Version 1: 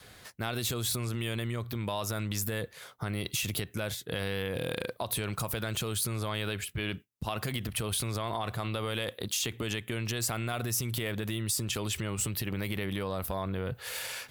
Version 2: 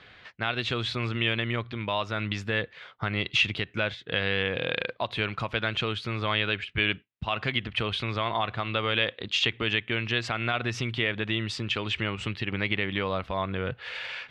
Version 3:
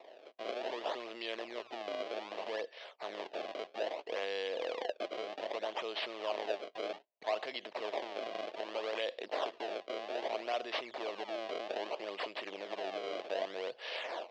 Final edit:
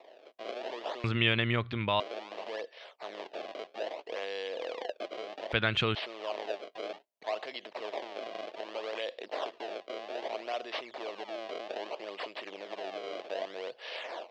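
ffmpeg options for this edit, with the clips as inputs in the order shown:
-filter_complex "[1:a]asplit=2[a][b];[2:a]asplit=3[c][d][e];[c]atrim=end=1.042[f];[a]atrim=start=1.038:end=2.002[g];[d]atrim=start=1.998:end=5.522[h];[b]atrim=start=5.518:end=5.952[i];[e]atrim=start=5.948[j];[f][g]acrossfade=d=0.004:c1=hsin:c2=hsin[k];[k][h]acrossfade=d=0.004:c1=hsin:c2=hsin[l];[l][i]acrossfade=d=0.004:c1=hsin:c2=hsin[m];[m][j]acrossfade=d=0.004:c1=hsin:c2=hsin"

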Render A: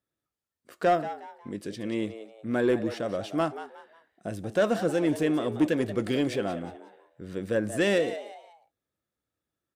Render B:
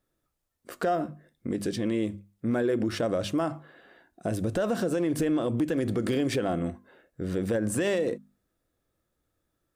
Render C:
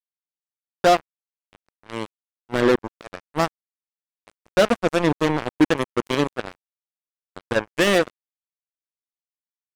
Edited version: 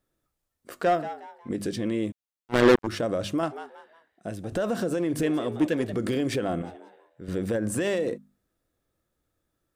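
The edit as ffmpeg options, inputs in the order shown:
-filter_complex "[0:a]asplit=4[a][b][c][d];[1:a]asplit=6[e][f][g][h][i][j];[e]atrim=end=0.822[k];[a]atrim=start=0.818:end=1.492[l];[f]atrim=start=1.488:end=2.122[m];[2:a]atrim=start=2.118:end=2.872[n];[g]atrim=start=2.868:end=3.432[o];[b]atrim=start=3.428:end=4.522[p];[h]atrim=start=4.518:end=5.232[q];[c]atrim=start=5.228:end=5.932[r];[i]atrim=start=5.928:end=6.622[s];[d]atrim=start=6.618:end=7.282[t];[j]atrim=start=7.278[u];[k][l]acrossfade=d=0.004:c1=hsin:c2=hsin[v];[v][m]acrossfade=d=0.004:c1=hsin:c2=hsin[w];[w][n]acrossfade=d=0.004:c1=hsin:c2=hsin[x];[x][o]acrossfade=d=0.004:c1=hsin:c2=hsin[y];[y][p]acrossfade=d=0.004:c1=hsin:c2=hsin[z];[z][q]acrossfade=d=0.004:c1=hsin:c2=hsin[aa];[aa][r]acrossfade=d=0.004:c1=hsin:c2=hsin[ab];[ab][s]acrossfade=d=0.004:c1=hsin:c2=hsin[ac];[ac][t]acrossfade=d=0.004:c1=hsin:c2=hsin[ad];[ad][u]acrossfade=d=0.004:c1=hsin:c2=hsin"

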